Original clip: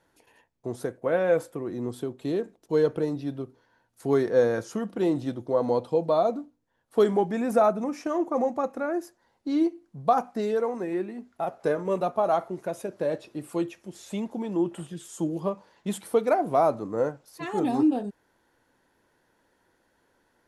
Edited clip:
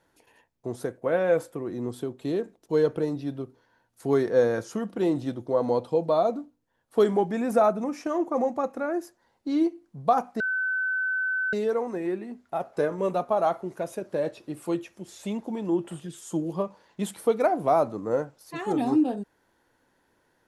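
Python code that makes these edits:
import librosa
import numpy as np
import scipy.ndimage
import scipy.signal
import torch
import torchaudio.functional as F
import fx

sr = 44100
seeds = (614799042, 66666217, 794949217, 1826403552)

y = fx.edit(x, sr, fx.insert_tone(at_s=10.4, length_s=1.13, hz=1520.0, db=-24.0), tone=tone)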